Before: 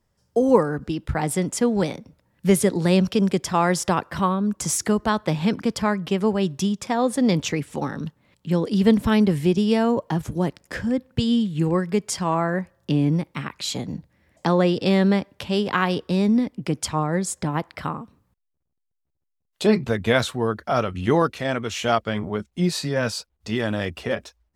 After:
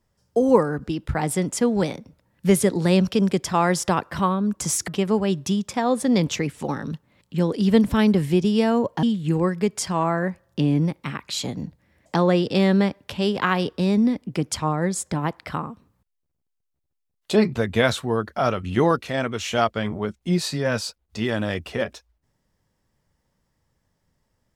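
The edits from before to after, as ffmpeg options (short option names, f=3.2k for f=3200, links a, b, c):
-filter_complex "[0:a]asplit=3[a][b][c];[a]atrim=end=4.882[d];[b]atrim=start=6.008:end=10.162[e];[c]atrim=start=11.338[f];[d][e]acrossfade=d=0.004:c1=hsin:c2=hsin[g];[g][f]acrossfade=d=0.004:c1=hsin:c2=hsin"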